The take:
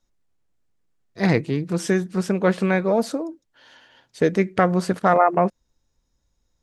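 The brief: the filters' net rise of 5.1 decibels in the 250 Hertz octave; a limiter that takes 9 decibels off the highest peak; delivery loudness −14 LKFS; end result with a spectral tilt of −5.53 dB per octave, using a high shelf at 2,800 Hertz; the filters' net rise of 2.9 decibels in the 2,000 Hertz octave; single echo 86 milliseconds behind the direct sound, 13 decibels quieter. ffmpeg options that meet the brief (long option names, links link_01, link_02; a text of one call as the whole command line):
ffmpeg -i in.wav -af "equalizer=frequency=250:width_type=o:gain=8,equalizer=frequency=2000:width_type=o:gain=6,highshelf=frequency=2800:gain=-7,alimiter=limit=-10dB:level=0:latency=1,aecho=1:1:86:0.224,volume=8dB" out.wav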